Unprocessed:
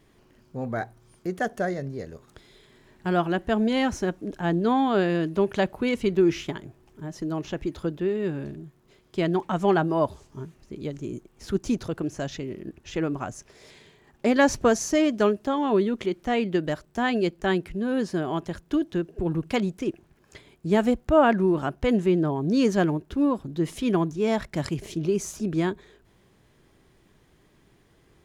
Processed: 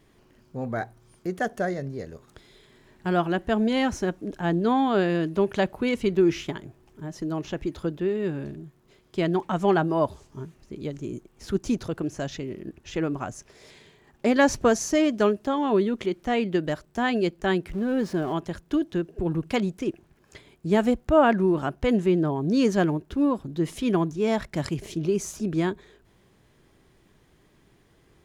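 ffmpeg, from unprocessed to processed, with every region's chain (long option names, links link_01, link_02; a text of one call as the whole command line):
ffmpeg -i in.wav -filter_complex "[0:a]asettb=1/sr,asplit=3[link_01][link_02][link_03];[link_01]atrim=end=17.694[link_04];[link_02]atrim=start=17.69:end=18.33,asetpts=PTS-STARTPTS,afade=type=in:duration=0.004:curve=qsin,afade=type=out:start_time=0.636:duration=0.004:curve=qsin,aeval=exprs='val(0)+0.5*0.0119*sgn(val(0))':channel_layout=same,highshelf=frequency=3000:gain=-7.5[link_05];[link_03]atrim=start=18.326[link_06];[link_04][link_05]acrossfade=duration=0.004:curve1=hsin:curve2=qsin[link_07];[link_07][link_06]acrossfade=duration=0.004:curve1=qsin:curve2=hsin" out.wav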